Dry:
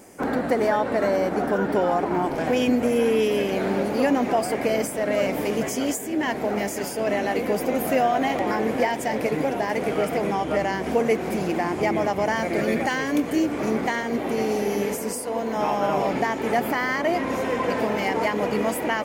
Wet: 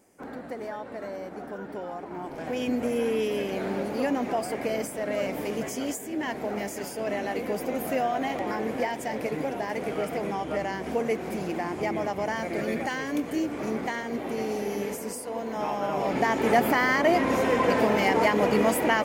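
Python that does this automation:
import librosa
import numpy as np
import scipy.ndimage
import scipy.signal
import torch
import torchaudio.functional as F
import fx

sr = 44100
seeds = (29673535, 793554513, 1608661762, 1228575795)

y = fx.gain(x, sr, db=fx.line((2.06, -14.5), (2.79, -6.0), (15.93, -6.0), (16.36, 1.5)))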